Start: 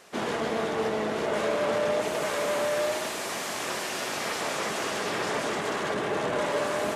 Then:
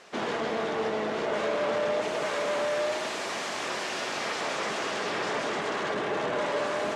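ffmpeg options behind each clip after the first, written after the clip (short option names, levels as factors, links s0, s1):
-filter_complex "[0:a]lowpass=6000,lowshelf=f=160:g=-7,asplit=2[s0][s1];[s1]alimiter=level_in=1.5:limit=0.0631:level=0:latency=1,volume=0.668,volume=0.891[s2];[s0][s2]amix=inputs=2:normalize=0,volume=0.668"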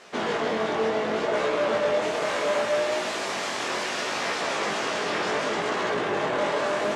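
-af "flanger=delay=16:depth=7.1:speed=0.69,volume=2.11"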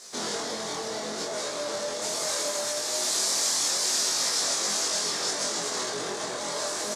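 -filter_complex "[0:a]alimiter=limit=0.112:level=0:latency=1,aexciter=amount=8.6:drive=6.5:freq=4100,asplit=2[s0][s1];[s1]adelay=24,volume=0.708[s2];[s0][s2]amix=inputs=2:normalize=0,volume=0.398"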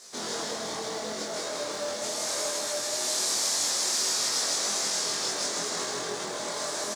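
-af "acrusher=bits=7:mode=log:mix=0:aa=0.000001,aecho=1:1:157:0.708,volume=0.708"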